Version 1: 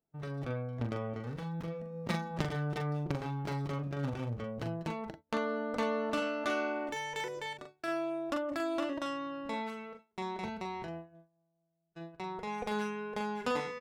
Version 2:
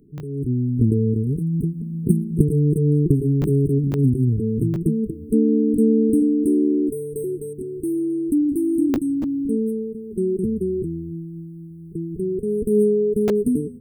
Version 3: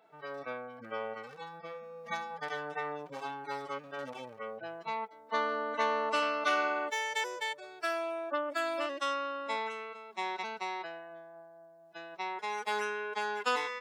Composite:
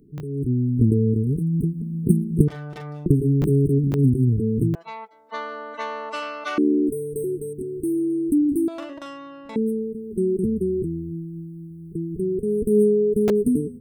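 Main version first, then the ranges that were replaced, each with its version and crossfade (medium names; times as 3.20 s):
2
2.48–3.06 s: from 1
4.75–6.58 s: from 3
8.68–9.56 s: from 1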